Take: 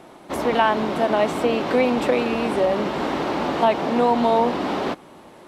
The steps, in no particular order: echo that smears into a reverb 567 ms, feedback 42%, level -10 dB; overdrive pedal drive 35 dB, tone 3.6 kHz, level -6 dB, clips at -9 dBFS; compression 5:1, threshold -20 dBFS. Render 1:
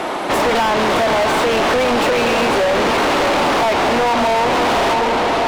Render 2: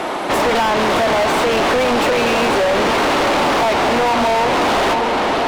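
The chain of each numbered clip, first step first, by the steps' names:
echo that smears into a reverb > compression > overdrive pedal; compression > echo that smears into a reverb > overdrive pedal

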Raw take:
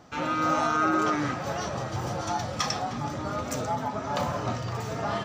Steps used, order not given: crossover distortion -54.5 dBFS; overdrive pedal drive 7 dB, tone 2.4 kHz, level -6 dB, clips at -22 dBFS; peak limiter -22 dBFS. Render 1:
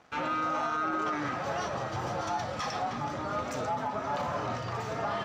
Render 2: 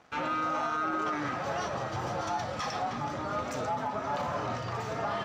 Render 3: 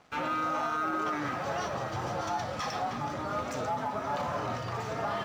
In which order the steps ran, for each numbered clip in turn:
crossover distortion > peak limiter > overdrive pedal; peak limiter > crossover distortion > overdrive pedal; peak limiter > overdrive pedal > crossover distortion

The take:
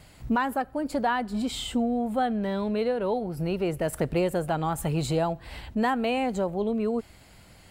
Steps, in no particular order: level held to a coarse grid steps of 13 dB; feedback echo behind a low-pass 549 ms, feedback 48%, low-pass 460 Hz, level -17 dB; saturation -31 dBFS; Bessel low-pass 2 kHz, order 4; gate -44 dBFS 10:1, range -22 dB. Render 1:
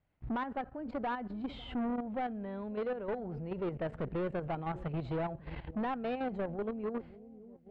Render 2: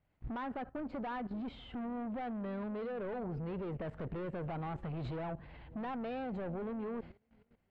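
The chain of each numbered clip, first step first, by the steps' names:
gate > feedback echo behind a low-pass > level held to a coarse grid > saturation > Bessel low-pass; saturation > feedback echo behind a low-pass > gate > Bessel low-pass > level held to a coarse grid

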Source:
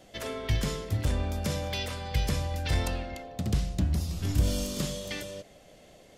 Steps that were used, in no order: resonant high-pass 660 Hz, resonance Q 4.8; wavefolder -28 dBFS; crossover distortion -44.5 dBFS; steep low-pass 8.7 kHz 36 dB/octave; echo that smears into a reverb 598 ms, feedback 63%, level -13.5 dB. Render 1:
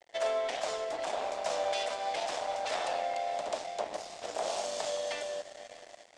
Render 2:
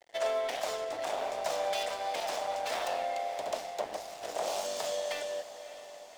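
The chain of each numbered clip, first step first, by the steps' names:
echo that smears into a reverb > wavefolder > resonant high-pass > crossover distortion > steep low-pass; steep low-pass > wavefolder > resonant high-pass > crossover distortion > echo that smears into a reverb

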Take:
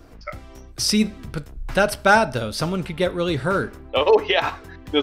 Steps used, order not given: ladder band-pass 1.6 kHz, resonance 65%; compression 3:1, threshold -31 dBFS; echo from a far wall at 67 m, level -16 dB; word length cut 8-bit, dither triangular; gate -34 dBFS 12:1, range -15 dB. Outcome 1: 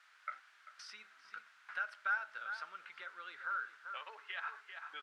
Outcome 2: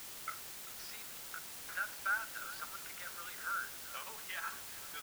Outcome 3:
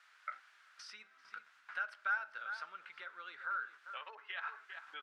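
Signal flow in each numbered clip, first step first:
gate > echo from a far wall > compression > word length cut > ladder band-pass; gate > compression > ladder band-pass > word length cut > echo from a far wall; echo from a far wall > gate > word length cut > compression > ladder band-pass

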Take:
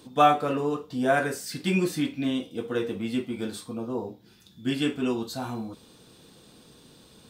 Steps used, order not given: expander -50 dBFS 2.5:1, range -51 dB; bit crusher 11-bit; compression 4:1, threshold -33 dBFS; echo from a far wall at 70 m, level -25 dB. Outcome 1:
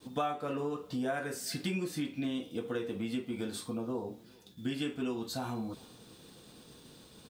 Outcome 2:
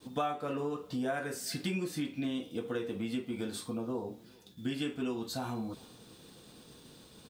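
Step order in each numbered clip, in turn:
bit crusher > compression > expander > echo from a far wall; bit crusher > expander > compression > echo from a far wall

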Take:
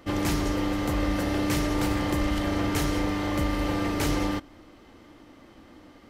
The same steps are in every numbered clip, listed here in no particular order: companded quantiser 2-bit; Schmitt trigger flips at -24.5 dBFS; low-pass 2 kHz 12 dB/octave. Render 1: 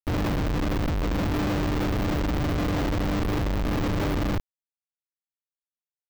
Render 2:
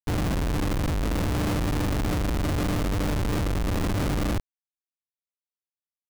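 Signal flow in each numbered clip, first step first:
Schmitt trigger > low-pass > companded quantiser; low-pass > Schmitt trigger > companded quantiser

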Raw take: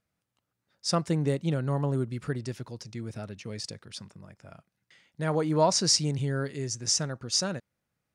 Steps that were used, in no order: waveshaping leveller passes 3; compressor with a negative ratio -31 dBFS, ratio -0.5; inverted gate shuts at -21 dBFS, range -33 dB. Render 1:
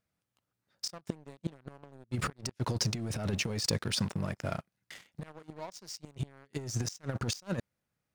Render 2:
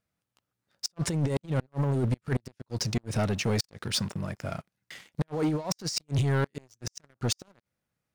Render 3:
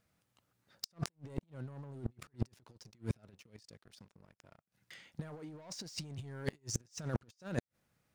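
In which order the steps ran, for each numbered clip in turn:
inverted gate > waveshaping leveller > compressor with a negative ratio; compressor with a negative ratio > inverted gate > waveshaping leveller; waveshaping leveller > compressor with a negative ratio > inverted gate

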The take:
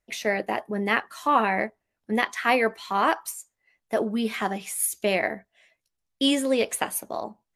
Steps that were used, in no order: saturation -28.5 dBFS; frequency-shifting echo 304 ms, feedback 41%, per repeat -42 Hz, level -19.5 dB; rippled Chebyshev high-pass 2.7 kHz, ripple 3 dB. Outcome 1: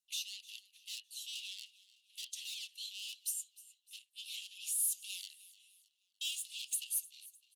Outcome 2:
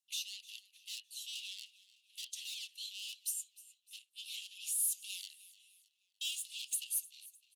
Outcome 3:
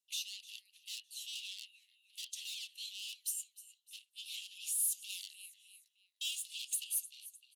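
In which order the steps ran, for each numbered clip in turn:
saturation > frequency-shifting echo > rippled Chebyshev high-pass; saturation > rippled Chebyshev high-pass > frequency-shifting echo; frequency-shifting echo > saturation > rippled Chebyshev high-pass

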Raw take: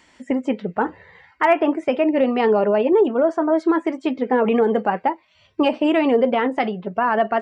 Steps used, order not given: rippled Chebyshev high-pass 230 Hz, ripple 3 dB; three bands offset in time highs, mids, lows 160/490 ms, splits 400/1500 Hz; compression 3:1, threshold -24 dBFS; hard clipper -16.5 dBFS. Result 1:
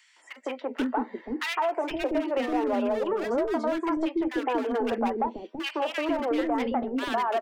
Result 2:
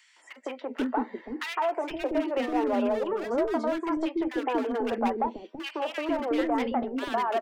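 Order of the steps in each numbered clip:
rippled Chebyshev high-pass > hard clipper > three bands offset in time > compression; rippled Chebyshev high-pass > hard clipper > compression > three bands offset in time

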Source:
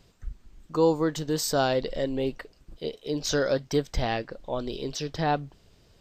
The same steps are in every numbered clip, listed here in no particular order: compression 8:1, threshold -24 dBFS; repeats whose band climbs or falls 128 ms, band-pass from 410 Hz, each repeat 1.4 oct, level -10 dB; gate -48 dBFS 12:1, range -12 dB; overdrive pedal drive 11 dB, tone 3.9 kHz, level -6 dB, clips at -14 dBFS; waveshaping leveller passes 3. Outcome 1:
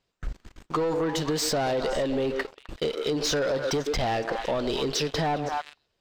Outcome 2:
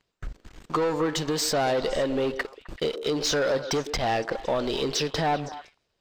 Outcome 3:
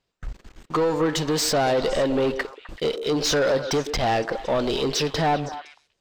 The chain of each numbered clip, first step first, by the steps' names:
gate > repeats whose band climbs or falls > waveshaping leveller > overdrive pedal > compression; waveshaping leveller > compression > repeats whose band climbs or falls > gate > overdrive pedal; compression > gate > waveshaping leveller > repeats whose band climbs or falls > overdrive pedal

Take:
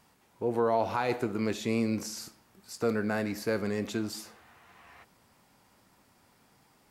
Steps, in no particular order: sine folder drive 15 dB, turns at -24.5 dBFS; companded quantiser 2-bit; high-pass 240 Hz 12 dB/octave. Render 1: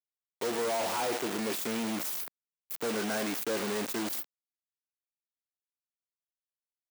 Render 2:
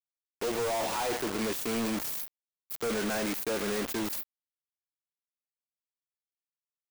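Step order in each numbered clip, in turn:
companded quantiser > sine folder > high-pass; high-pass > companded quantiser > sine folder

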